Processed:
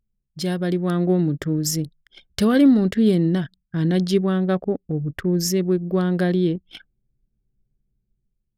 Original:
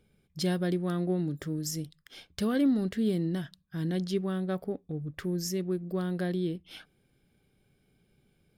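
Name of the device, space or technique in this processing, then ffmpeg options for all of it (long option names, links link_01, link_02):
voice memo with heavy noise removal: -filter_complex "[0:a]asettb=1/sr,asplit=3[link_01][link_02][link_03];[link_01]atrim=end=4.594[link_04];[link_02]atrim=start=4.59:end=5.34,asetpts=PTS-STARTPTS,afade=type=in:duration=0.004:curve=qsin,afade=type=out:start_time=0.746:duration=0.004:curve=qsin,equalizer=frequency=4300:width_type=o:width=1.9:gain=-5[link_05];[link_03]atrim=start=5.336[link_06];[link_04][link_05]acrossfade=duration=0.004:curve1=hsin:curve2=qsin[link_07];[link_07][link_06]acrossfade=duration=0.004:curve1=qsin:curve2=hsin,anlmdn=0.1,dynaudnorm=framelen=230:gausssize=7:maxgain=8dB,volume=3dB"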